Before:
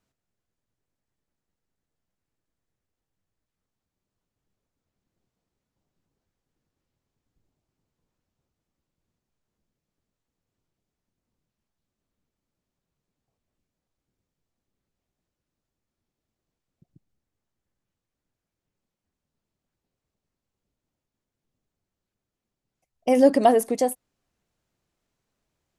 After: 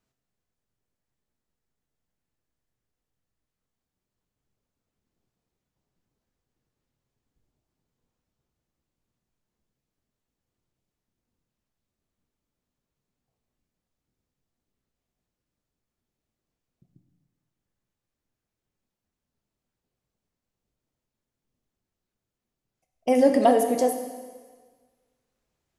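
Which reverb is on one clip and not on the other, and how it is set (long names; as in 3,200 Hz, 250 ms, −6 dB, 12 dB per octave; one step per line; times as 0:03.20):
dense smooth reverb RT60 1.5 s, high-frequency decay 1×, DRR 5.5 dB
level −2 dB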